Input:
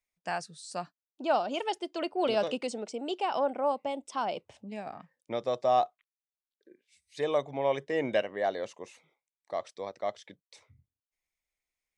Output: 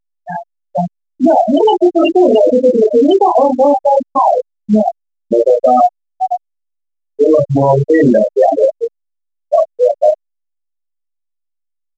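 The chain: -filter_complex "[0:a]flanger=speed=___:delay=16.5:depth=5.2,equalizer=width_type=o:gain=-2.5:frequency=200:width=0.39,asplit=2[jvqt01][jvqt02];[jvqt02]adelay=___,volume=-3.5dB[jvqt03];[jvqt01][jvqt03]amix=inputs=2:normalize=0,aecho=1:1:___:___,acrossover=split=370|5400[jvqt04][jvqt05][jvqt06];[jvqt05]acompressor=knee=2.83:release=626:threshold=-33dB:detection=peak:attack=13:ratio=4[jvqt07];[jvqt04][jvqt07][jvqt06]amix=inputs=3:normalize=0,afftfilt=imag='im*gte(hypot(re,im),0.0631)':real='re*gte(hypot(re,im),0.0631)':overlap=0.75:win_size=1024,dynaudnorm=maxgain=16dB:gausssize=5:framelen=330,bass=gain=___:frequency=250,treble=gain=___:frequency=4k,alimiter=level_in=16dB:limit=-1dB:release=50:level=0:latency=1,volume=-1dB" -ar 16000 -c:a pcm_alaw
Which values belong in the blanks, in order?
0.58, 28, 506, 0.126, 4, 12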